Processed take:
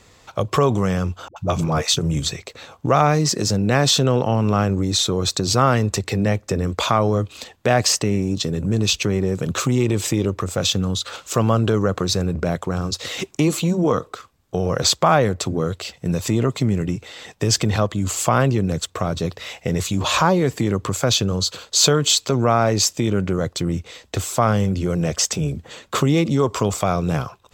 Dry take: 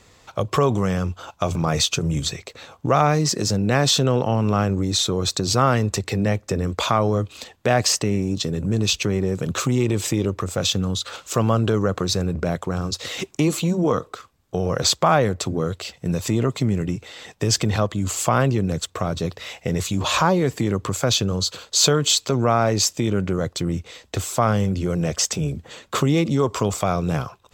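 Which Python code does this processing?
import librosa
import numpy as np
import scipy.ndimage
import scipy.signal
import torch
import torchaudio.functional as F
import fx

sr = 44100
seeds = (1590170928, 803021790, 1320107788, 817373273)

y = fx.dispersion(x, sr, late='highs', ms=82.0, hz=400.0, at=(1.28, 1.97))
y = F.gain(torch.from_numpy(y), 1.5).numpy()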